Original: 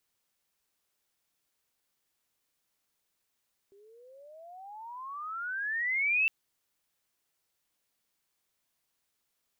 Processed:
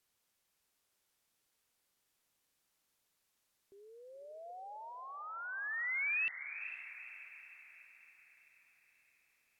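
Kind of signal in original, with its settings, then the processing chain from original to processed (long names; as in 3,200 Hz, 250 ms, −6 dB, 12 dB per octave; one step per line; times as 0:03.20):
pitch glide with a swell sine, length 2.56 s, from 389 Hz, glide +33.5 semitones, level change +33 dB, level −22.5 dB
treble cut that deepens with the level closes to 2,100 Hz, closed at −35 dBFS
dynamic equaliser 1,200 Hz, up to −7 dB, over −50 dBFS, Q 0.86
feedback delay with all-pass diffusion 466 ms, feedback 52%, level −10 dB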